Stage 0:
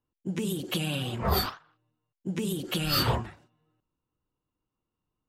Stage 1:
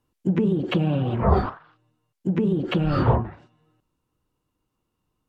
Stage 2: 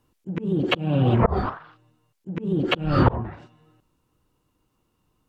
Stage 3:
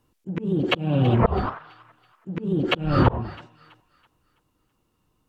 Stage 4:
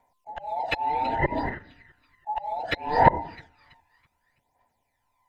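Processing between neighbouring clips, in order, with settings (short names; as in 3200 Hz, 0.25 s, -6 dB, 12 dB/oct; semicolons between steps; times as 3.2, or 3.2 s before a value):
treble ducked by the level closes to 1000 Hz, closed at -27.5 dBFS; in parallel at +1 dB: vocal rider; on the sum: gain +3 dB
auto swell 0.335 s; gain +6.5 dB
thin delay 0.329 s, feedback 37%, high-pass 1600 Hz, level -15 dB
band inversion scrambler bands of 1000 Hz; phaser 0.65 Hz, delay 1.2 ms, feedback 59%; gain -5.5 dB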